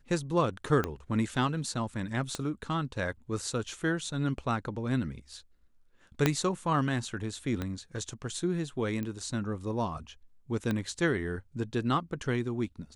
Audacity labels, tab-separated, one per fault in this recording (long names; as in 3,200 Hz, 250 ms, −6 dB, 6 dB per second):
0.840000	0.840000	click −16 dBFS
2.350000	2.350000	click −19 dBFS
6.260000	6.260000	click −9 dBFS
7.620000	7.620000	click −20 dBFS
9.030000	9.030000	click −23 dBFS
10.710000	10.710000	click −18 dBFS